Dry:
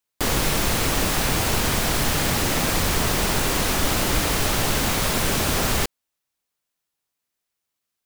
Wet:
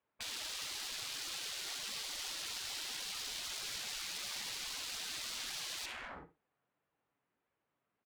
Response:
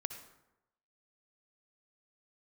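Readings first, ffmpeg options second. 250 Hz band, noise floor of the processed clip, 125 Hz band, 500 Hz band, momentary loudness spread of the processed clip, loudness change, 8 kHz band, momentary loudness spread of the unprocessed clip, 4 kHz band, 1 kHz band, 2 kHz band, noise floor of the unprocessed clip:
−35.0 dB, below −85 dBFS, −39.0 dB, −30.5 dB, 1 LU, −18.5 dB, −17.0 dB, 0 LU, −13.5 dB, −25.0 dB, −19.5 dB, −82 dBFS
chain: -filter_complex "[0:a]acontrast=84,highpass=76,equalizer=frequency=5400:width_type=o:width=0.93:gain=-11.5,flanger=delay=1.7:depth=5.6:regen=47:speed=1.6:shape=sinusoidal,lowpass=7400,aecho=1:1:62|124:0.2|0.0439[link_01];[1:a]atrim=start_sample=2205,afade=type=out:start_time=0.44:duration=0.01,atrim=end_sample=19845[link_02];[link_01][link_02]afir=irnorm=-1:irlink=0,aeval=exprs='0.0708*(abs(mod(val(0)/0.0708+3,4)-2)-1)':channel_layout=same,adynamicsmooth=sensitivity=8:basefreq=1900,alimiter=level_in=9dB:limit=-24dB:level=0:latency=1,volume=-9dB,afftfilt=real='re*lt(hypot(re,im),0.0141)':imag='im*lt(hypot(re,im),0.0141)':win_size=1024:overlap=0.75,volume=5dB"

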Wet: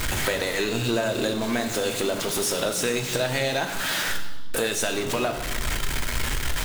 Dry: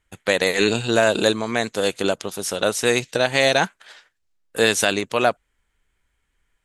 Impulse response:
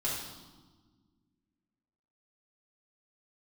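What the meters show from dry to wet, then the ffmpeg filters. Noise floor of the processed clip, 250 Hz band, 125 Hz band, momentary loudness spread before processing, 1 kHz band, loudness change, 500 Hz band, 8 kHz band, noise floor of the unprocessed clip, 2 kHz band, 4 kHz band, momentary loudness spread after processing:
−30 dBFS, −3.0 dB, +1.0 dB, 7 LU, −5.0 dB, −5.0 dB, −5.5 dB, 0.0 dB, −73 dBFS, −4.5 dB, −3.0 dB, 4 LU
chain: -filter_complex "[0:a]aeval=exprs='val(0)+0.5*0.0944*sgn(val(0))':channel_layout=same,acompressor=threshold=-24dB:ratio=4,asplit=2[link_01][link_02];[1:a]atrim=start_sample=2205[link_03];[link_02][link_03]afir=irnorm=-1:irlink=0,volume=-7dB[link_04];[link_01][link_04]amix=inputs=2:normalize=0,volume=-3dB"

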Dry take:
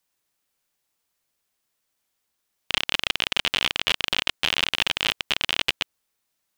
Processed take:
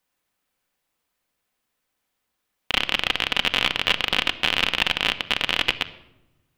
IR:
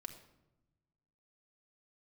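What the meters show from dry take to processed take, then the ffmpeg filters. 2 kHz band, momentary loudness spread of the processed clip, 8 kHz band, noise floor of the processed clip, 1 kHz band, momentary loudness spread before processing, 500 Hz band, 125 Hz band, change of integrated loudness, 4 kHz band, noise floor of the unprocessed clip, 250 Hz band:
+3.0 dB, 4 LU, −3.0 dB, −78 dBFS, +4.0 dB, 4 LU, +4.0 dB, +3.5 dB, +2.0 dB, +1.0 dB, −78 dBFS, +4.5 dB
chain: -filter_complex "[0:a]asplit=2[link_01][link_02];[1:a]atrim=start_sample=2205,lowpass=3800[link_03];[link_02][link_03]afir=irnorm=-1:irlink=0,volume=4.5dB[link_04];[link_01][link_04]amix=inputs=2:normalize=0,volume=-2dB"

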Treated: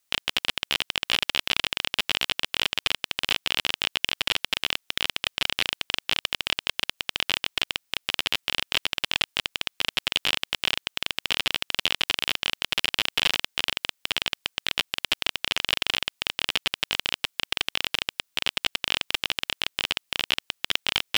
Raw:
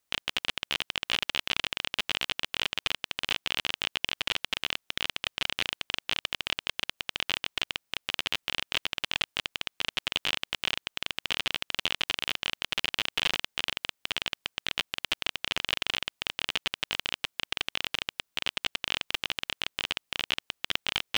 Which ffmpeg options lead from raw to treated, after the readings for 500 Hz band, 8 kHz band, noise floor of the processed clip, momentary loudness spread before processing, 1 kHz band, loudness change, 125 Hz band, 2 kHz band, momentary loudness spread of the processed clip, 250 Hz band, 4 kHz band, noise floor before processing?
+4.0 dB, +5.5 dB, −73 dBFS, 4 LU, +4.0 dB, +4.5 dB, +3.5 dB, +4.0 dB, 4 LU, +4.0 dB, +5.0 dB, −79 dBFS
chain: -af "tiltshelf=frequency=1300:gain=-5,aeval=exprs='0.708*(cos(1*acos(clip(val(0)/0.708,-1,1)))-cos(1*PI/2))+0.0447*(cos(8*acos(clip(val(0)/0.708,-1,1)))-cos(8*PI/2))':channel_layout=same,volume=1.5dB"

